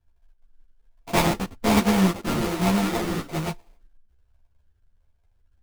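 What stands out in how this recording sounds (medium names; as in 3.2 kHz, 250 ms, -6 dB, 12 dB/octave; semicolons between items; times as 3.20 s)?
a buzz of ramps at a fixed pitch in blocks of 64 samples; phasing stages 12, 1.2 Hz, lowest notch 630–1700 Hz; aliases and images of a low sample rate 1.6 kHz, jitter 20%; a shimmering, thickened sound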